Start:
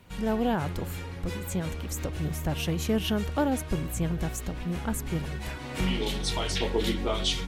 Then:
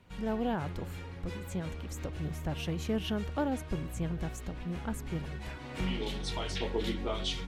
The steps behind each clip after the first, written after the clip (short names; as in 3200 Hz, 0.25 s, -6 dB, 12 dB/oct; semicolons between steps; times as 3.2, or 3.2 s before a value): high shelf 7700 Hz -11 dB; gain -5.5 dB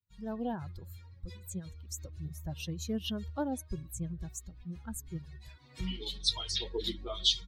per-bin expansion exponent 2; resonant high shelf 2900 Hz +8.5 dB, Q 3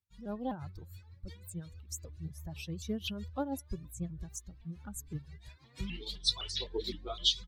tremolo 6.2 Hz, depth 49%; shaped vibrato saw up 3.9 Hz, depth 160 cents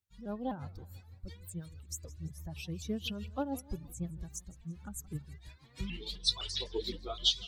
warbling echo 0.167 s, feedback 48%, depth 211 cents, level -20 dB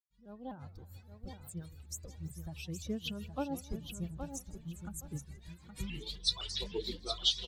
opening faded in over 0.99 s; feedback echo 0.819 s, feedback 21%, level -8 dB; gain -1.5 dB